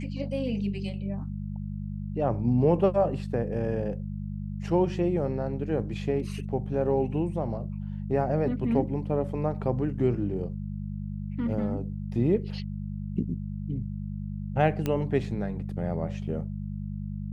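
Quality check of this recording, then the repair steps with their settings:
hum 50 Hz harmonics 4 -34 dBFS
14.86 s: pop -15 dBFS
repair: de-click; de-hum 50 Hz, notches 4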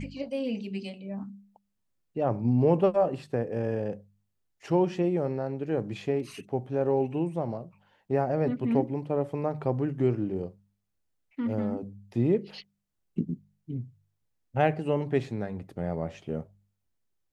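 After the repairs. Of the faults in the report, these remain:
nothing left

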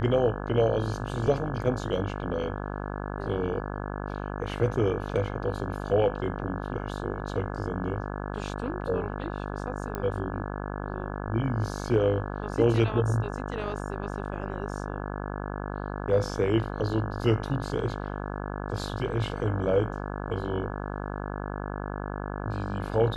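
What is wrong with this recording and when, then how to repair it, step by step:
buzz 50 Hz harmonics 34 -34 dBFS
9.95 s: pop -19 dBFS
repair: de-click; de-hum 50 Hz, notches 34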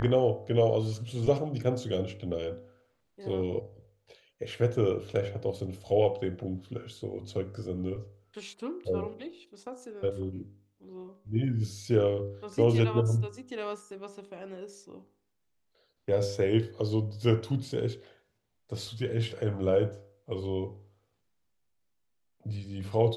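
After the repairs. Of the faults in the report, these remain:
nothing left

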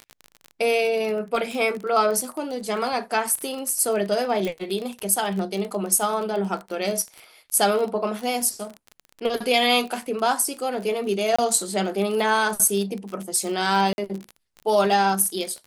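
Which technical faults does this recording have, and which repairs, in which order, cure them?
crackle 27 per s -28 dBFS
4.45 s: pop
11.36–11.38 s: dropout 25 ms
13.93–13.98 s: dropout 51 ms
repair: de-click; interpolate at 11.36 s, 25 ms; interpolate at 13.93 s, 51 ms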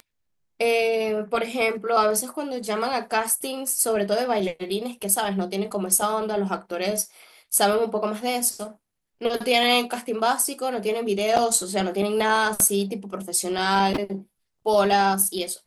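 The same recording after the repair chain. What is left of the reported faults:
4.45 s: pop

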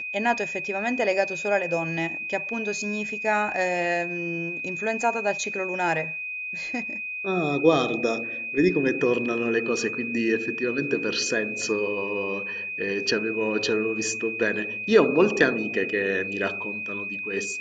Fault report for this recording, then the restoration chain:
whine 2.5 kHz -30 dBFS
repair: band-stop 2.5 kHz, Q 30

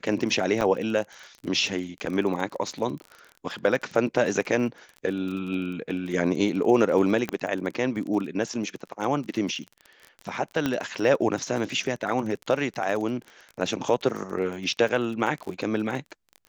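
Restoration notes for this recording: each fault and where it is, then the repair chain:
crackle 31 per s -32 dBFS
0.61 s: dropout 2.7 ms
7.29 s: pop -14 dBFS
10.66 s: pop -11 dBFS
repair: de-click; interpolate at 0.61 s, 2.7 ms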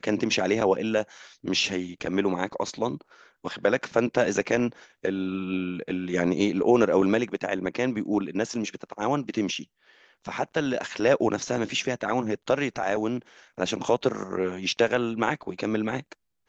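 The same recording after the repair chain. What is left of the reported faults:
nothing left

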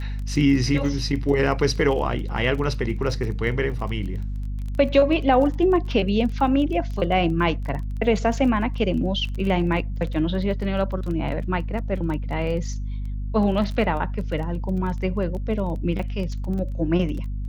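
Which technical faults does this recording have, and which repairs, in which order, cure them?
crackle 21 per s -30 dBFS
hum 50 Hz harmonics 5 -28 dBFS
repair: de-click; de-hum 50 Hz, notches 5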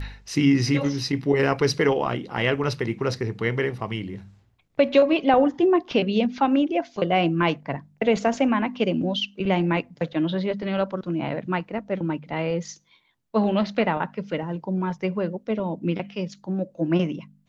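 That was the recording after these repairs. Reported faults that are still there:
nothing left

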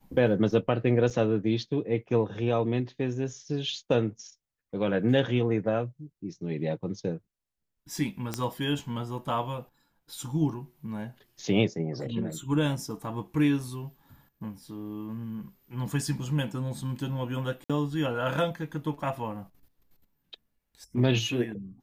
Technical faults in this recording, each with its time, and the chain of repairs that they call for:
1.10–1.11 s: dropout 6.3 ms
8.34 s: pop -14 dBFS
17.64–17.70 s: dropout 56 ms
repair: de-click; interpolate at 1.10 s, 6.3 ms; interpolate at 17.64 s, 56 ms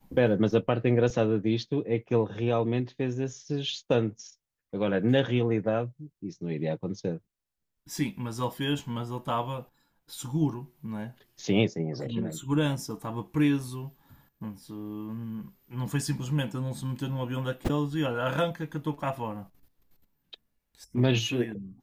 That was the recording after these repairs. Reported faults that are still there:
nothing left

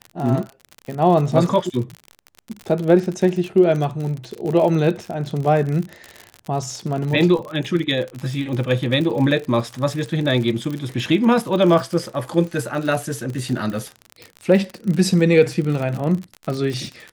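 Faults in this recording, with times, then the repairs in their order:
crackle 53 per s -25 dBFS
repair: de-click

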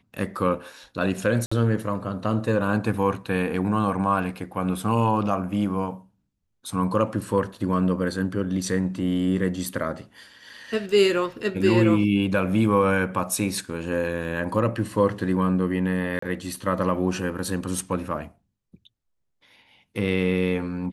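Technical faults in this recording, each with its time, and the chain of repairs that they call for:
1.46–1.51 s: dropout 55 ms
16.19–16.22 s: dropout 34 ms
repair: interpolate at 1.46 s, 55 ms; interpolate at 16.19 s, 34 ms

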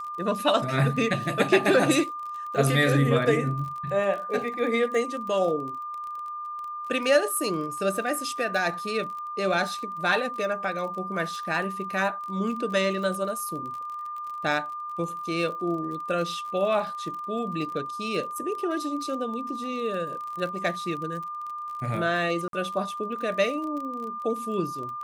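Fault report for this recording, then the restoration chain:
crackle 32 per s -34 dBFS
whine 1.2 kHz -32 dBFS
22.48–22.53 s: dropout 52 ms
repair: de-click; band-stop 1.2 kHz, Q 30; interpolate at 22.48 s, 52 ms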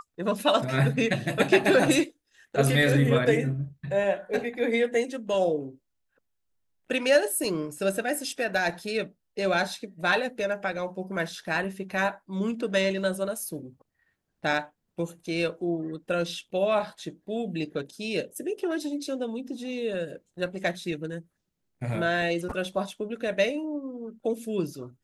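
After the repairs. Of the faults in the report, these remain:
nothing left

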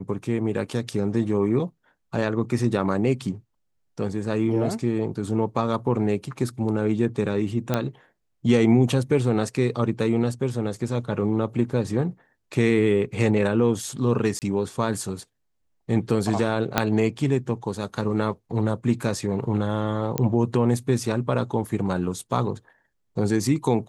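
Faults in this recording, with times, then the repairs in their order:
7.74 s: pop -9 dBFS
14.39–14.42 s: dropout 28 ms
16.78 s: pop -3 dBFS
20.18 s: pop -9 dBFS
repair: de-click; interpolate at 14.39 s, 28 ms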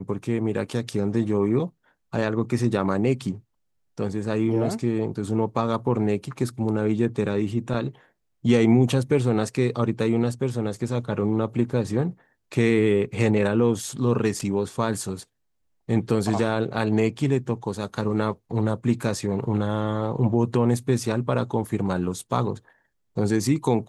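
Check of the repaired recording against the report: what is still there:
16.78 s: pop

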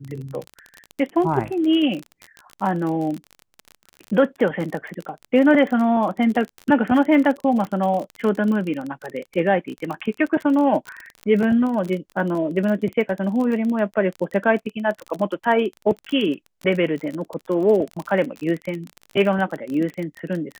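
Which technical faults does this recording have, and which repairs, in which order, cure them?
crackle 30 per s -26 dBFS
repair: de-click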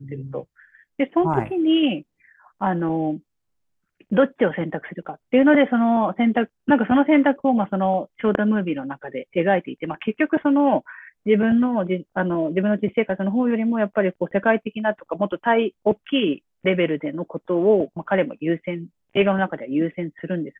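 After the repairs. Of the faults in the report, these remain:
nothing left

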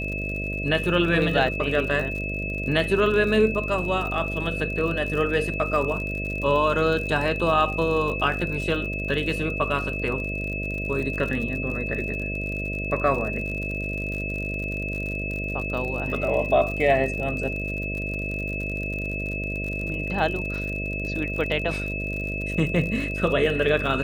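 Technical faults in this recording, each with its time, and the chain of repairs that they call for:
buzz 50 Hz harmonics 13 -31 dBFS
crackle 58 per s -31 dBFS
whine 2.6 kHz -30 dBFS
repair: de-click; de-hum 50 Hz, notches 13; band-stop 2.6 kHz, Q 30

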